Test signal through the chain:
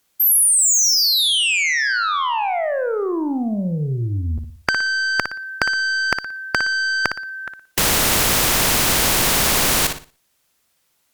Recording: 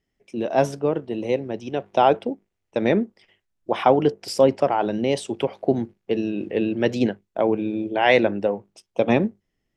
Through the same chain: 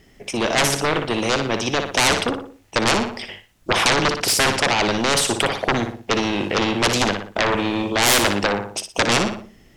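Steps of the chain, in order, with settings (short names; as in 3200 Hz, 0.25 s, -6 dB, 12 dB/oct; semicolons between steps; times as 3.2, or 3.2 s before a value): added harmonics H 6 -44 dB, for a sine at -3 dBFS; sine folder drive 15 dB, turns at -3 dBFS; on a send: flutter echo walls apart 10.1 m, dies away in 0.32 s; on the sum: spectral compressor 2:1; gain -1 dB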